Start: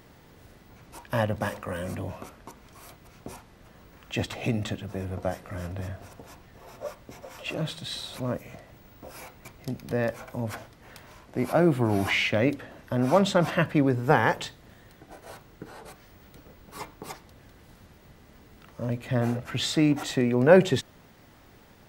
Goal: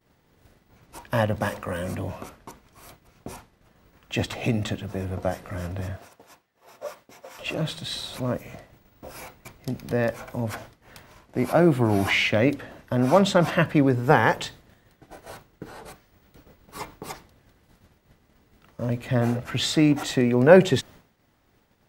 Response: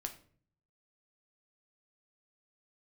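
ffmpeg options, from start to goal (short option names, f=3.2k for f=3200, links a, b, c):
-filter_complex "[0:a]asettb=1/sr,asplit=3[a][b][c];[a]atrim=end=5.974[d];[b]atrim=start=5.97:end=7.39,asetpts=PTS-STARTPTS,afade=t=in:d=0.004:c=qsin,afade=t=out:st=1.416:d=0.004:c=qsin,highpass=f=470:p=1[e];[c]atrim=start=7.386[f];[d][e]acrossfade=d=0.004:c1=hsin:c2=qsin[g];[g][f]acrossfade=d=0.004:c1=qsin:c2=hsin,agate=range=-33dB:threshold=-44dB:ratio=3:detection=peak,volume=3dB"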